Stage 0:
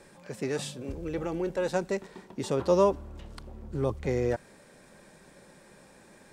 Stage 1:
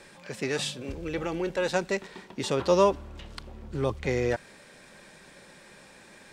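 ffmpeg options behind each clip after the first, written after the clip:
ffmpeg -i in.wav -af "equalizer=frequency=3000:width_type=o:width=2.4:gain=9" out.wav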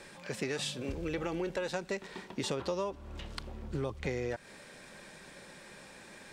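ffmpeg -i in.wav -af "acompressor=threshold=-31dB:ratio=10" out.wav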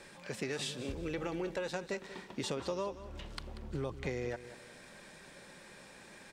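ffmpeg -i in.wav -af "aecho=1:1:187|374|561:0.2|0.0599|0.018,volume=-2.5dB" out.wav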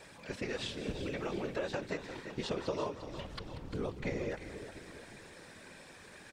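ffmpeg -i in.wav -filter_complex "[0:a]acrossover=split=5600[link_01][link_02];[link_02]acompressor=threshold=-60dB:ratio=4:attack=1:release=60[link_03];[link_01][link_03]amix=inputs=2:normalize=0,asplit=7[link_04][link_05][link_06][link_07][link_08][link_09][link_10];[link_05]adelay=347,afreqshift=-35,volume=-10dB[link_11];[link_06]adelay=694,afreqshift=-70,volume=-15.4dB[link_12];[link_07]adelay=1041,afreqshift=-105,volume=-20.7dB[link_13];[link_08]adelay=1388,afreqshift=-140,volume=-26.1dB[link_14];[link_09]adelay=1735,afreqshift=-175,volume=-31.4dB[link_15];[link_10]adelay=2082,afreqshift=-210,volume=-36.8dB[link_16];[link_04][link_11][link_12][link_13][link_14][link_15][link_16]amix=inputs=7:normalize=0,afftfilt=real='hypot(re,im)*cos(2*PI*random(0))':imag='hypot(re,im)*sin(2*PI*random(1))':win_size=512:overlap=0.75,volume=6dB" out.wav

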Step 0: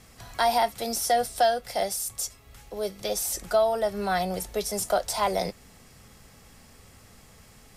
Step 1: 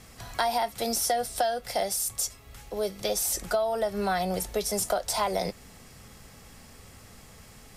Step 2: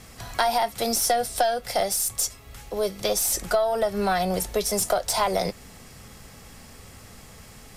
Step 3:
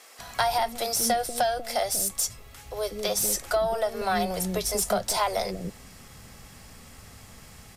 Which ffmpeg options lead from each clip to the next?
ffmpeg -i in.wav -af "acompressor=threshold=-26dB:ratio=5,volume=2.5dB" out.wav
ffmpeg -i in.wav -af "aeval=exprs='0.251*(cos(1*acos(clip(val(0)/0.251,-1,1)))-cos(1*PI/2))+0.0141*(cos(4*acos(clip(val(0)/0.251,-1,1)))-cos(4*PI/2))':channel_layout=same,volume=4dB" out.wav
ffmpeg -i in.wav -filter_complex "[0:a]acrossover=split=400[link_01][link_02];[link_01]adelay=190[link_03];[link_03][link_02]amix=inputs=2:normalize=0,volume=-1.5dB" out.wav

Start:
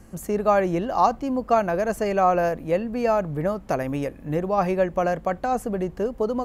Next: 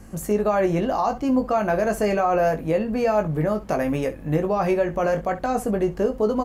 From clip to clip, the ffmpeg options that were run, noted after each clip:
ffmpeg -i in.wav -filter_complex "[0:a]alimiter=limit=-17dB:level=0:latency=1:release=57,asplit=2[link_01][link_02];[link_02]aecho=0:1:19|66:0.501|0.158[link_03];[link_01][link_03]amix=inputs=2:normalize=0,volume=3dB" out.wav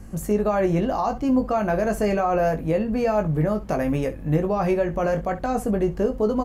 ffmpeg -i in.wav -af "lowshelf=frequency=190:gain=7.5,volume=-2dB" out.wav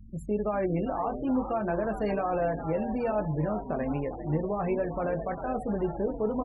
ffmpeg -i in.wav -filter_complex "[0:a]asplit=2[link_01][link_02];[link_02]asplit=6[link_03][link_04][link_05][link_06][link_07][link_08];[link_03]adelay=402,afreqshift=89,volume=-10.5dB[link_09];[link_04]adelay=804,afreqshift=178,volume=-16dB[link_10];[link_05]adelay=1206,afreqshift=267,volume=-21.5dB[link_11];[link_06]adelay=1608,afreqshift=356,volume=-27dB[link_12];[link_07]adelay=2010,afreqshift=445,volume=-32.6dB[link_13];[link_08]adelay=2412,afreqshift=534,volume=-38.1dB[link_14];[link_09][link_10][link_11][link_12][link_13][link_14]amix=inputs=6:normalize=0[link_15];[link_01][link_15]amix=inputs=2:normalize=0,afftfilt=real='re*gte(hypot(re,im),0.0316)':imag='im*gte(hypot(re,im),0.0316)':win_size=1024:overlap=0.75,volume=-7.5dB" out.wav

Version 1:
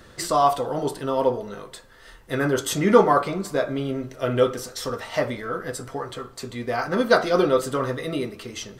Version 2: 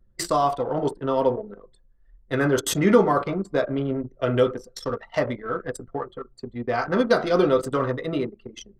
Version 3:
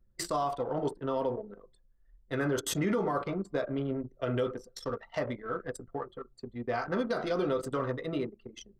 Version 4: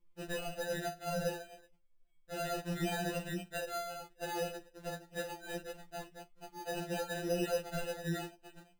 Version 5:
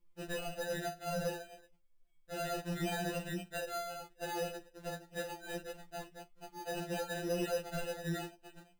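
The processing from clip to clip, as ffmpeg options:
ffmpeg -i in.wav -filter_complex "[0:a]anlmdn=63.1,acrossover=split=410[link_01][link_02];[link_02]acompressor=threshold=-21dB:ratio=4[link_03];[link_01][link_03]amix=inputs=2:normalize=0,volume=1.5dB" out.wav
ffmpeg -i in.wav -af "alimiter=limit=-14dB:level=0:latency=1:release=61,volume=-7dB" out.wav
ffmpeg -i in.wav -af "flanger=delay=5.9:depth=9.1:regen=71:speed=0.5:shape=sinusoidal,acrusher=samples=40:mix=1:aa=0.000001,afftfilt=real='re*2.83*eq(mod(b,8),0)':imag='im*2.83*eq(mod(b,8),0)':win_size=2048:overlap=0.75,volume=1dB" out.wav
ffmpeg -i in.wav -af "asoftclip=type=tanh:threshold=-25.5dB" out.wav

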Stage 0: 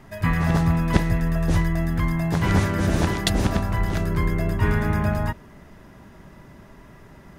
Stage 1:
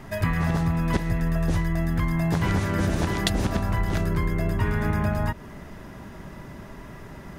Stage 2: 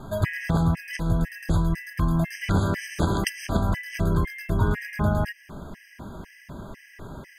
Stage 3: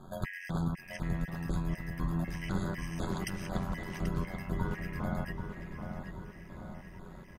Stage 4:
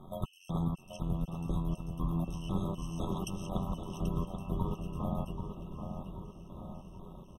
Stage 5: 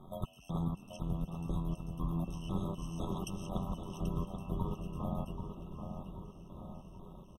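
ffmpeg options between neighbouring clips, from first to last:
ffmpeg -i in.wav -af "acompressor=threshold=-26dB:ratio=6,volume=5.5dB" out.wav
ffmpeg -i in.wav -af "afftfilt=real='re*gt(sin(2*PI*2*pts/sr)*(1-2*mod(floor(b*sr/1024/1600),2)),0)':imag='im*gt(sin(2*PI*2*pts/sr)*(1-2*mod(floor(b*sr/1024/1600),2)),0)':win_size=1024:overlap=0.75,volume=2.5dB" out.wav
ffmpeg -i in.wav -filter_complex "[0:a]tremolo=f=89:d=0.824,aecho=1:1:5.4:0.38,asplit=2[link_01][link_02];[link_02]adelay=784,lowpass=frequency=3400:poles=1,volume=-6.5dB,asplit=2[link_03][link_04];[link_04]adelay=784,lowpass=frequency=3400:poles=1,volume=0.53,asplit=2[link_05][link_06];[link_06]adelay=784,lowpass=frequency=3400:poles=1,volume=0.53,asplit=2[link_07][link_08];[link_08]adelay=784,lowpass=frequency=3400:poles=1,volume=0.53,asplit=2[link_09][link_10];[link_10]adelay=784,lowpass=frequency=3400:poles=1,volume=0.53,asplit=2[link_11][link_12];[link_12]adelay=784,lowpass=frequency=3400:poles=1,volume=0.53,asplit=2[link_13][link_14];[link_14]adelay=784,lowpass=frequency=3400:poles=1,volume=0.53[link_15];[link_01][link_03][link_05][link_07][link_09][link_11][link_13][link_15]amix=inputs=8:normalize=0,volume=-8dB" out.wav
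ffmpeg -i in.wav -af "afftfilt=real='re*eq(mod(floor(b*sr/1024/1300),2),0)':imag='im*eq(mod(floor(b*sr/1024/1300),2),0)':win_size=1024:overlap=0.75" out.wav
ffmpeg -i in.wav -filter_complex "[0:a]asplit=5[link_01][link_02][link_03][link_04][link_05];[link_02]adelay=151,afreqshift=35,volume=-22dB[link_06];[link_03]adelay=302,afreqshift=70,volume=-26.6dB[link_07];[link_04]adelay=453,afreqshift=105,volume=-31.2dB[link_08];[link_05]adelay=604,afreqshift=140,volume=-35.7dB[link_09];[link_01][link_06][link_07][link_08][link_09]amix=inputs=5:normalize=0,volume=-2.5dB" out.wav

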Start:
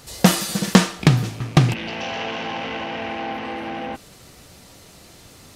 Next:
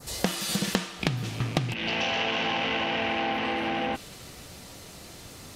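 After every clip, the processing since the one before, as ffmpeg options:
ffmpeg -i in.wav -af "adynamicequalizer=threshold=0.01:dfrequency=3000:dqfactor=1.1:tfrequency=3000:tqfactor=1.1:attack=5:release=100:ratio=0.375:range=2.5:mode=boostabove:tftype=bell,acompressor=threshold=-24dB:ratio=20,volume=1dB" out.wav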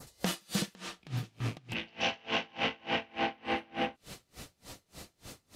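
ffmpeg -i in.wav -af "aeval=exprs='val(0)*pow(10,-33*(0.5-0.5*cos(2*PI*3.4*n/s))/20)':channel_layout=same" out.wav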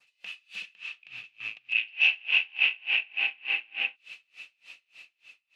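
ffmpeg -i in.wav -af "dynaudnorm=framelen=210:gausssize=7:maxgain=10dB,bandpass=frequency=2600:width_type=q:width=14:csg=0,volume=8dB" out.wav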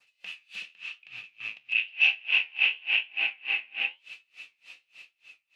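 ffmpeg -i in.wav -af "flanger=delay=8.8:depth=4.9:regen=70:speed=0.95:shape=sinusoidal,volume=4.5dB" out.wav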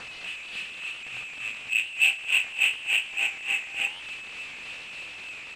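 ffmpeg -i in.wav -af "aeval=exprs='val(0)+0.5*0.0282*sgn(val(0))':channel_layout=same,aresample=22050,aresample=44100,adynamicsmooth=sensitivity=2.5:basefreq=3400" out.wav

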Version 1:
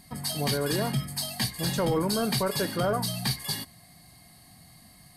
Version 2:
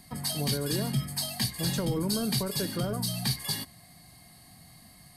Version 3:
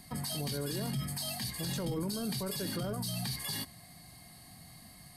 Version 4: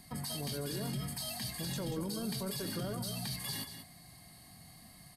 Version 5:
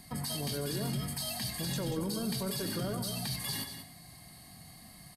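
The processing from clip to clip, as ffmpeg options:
ffmpeg -i in.wav -filter_complex "[0:a]acrossover=split=360|3000[link_01][link_02][link_03];[link_02]acompressor=threshold=-38dB:ratio=6[link_04];[link_01][link_04][link_03]amix=inputs=3:normalize=0" out.wav
ffmpeg -i in.wav -af "alimiter=level_in=3.5dB:limit=-24dB:level=0:latency=1:release=22,volume=-3.5dB" out.wav
ffmpeg -i in.wav -af "aecho=1:1:186:0.335,volume=-2.5dB" out.wav
ffmpeg -i in.wav -af "aecho=1:1:96:0.2,volume=3dB" out.wav

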